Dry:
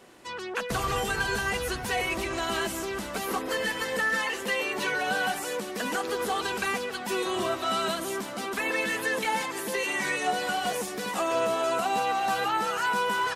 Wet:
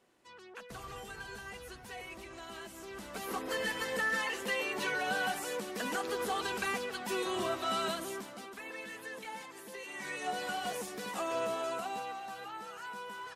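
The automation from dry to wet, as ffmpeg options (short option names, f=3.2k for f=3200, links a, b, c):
-af "volume=2.5dB,afade=t=in:st=2.72:d=0.88:silence=0.266073,afade=t=out:st=7.85:d=0.69:silence=0.298538,afade=t=in:st=9.88:d=0.51:silence=0.398107,afade=t=out:st=11.5:d=0.78:silence=0.354813"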